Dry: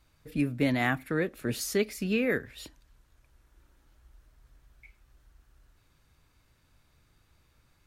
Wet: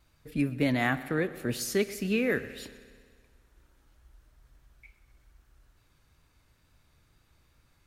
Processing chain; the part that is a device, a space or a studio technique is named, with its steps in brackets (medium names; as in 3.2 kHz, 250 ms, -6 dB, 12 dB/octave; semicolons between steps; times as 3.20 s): multi-head tape echo (multi-head delay 63 ms, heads first and second, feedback 69%, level -21 dB; wow and flutter 24 cents)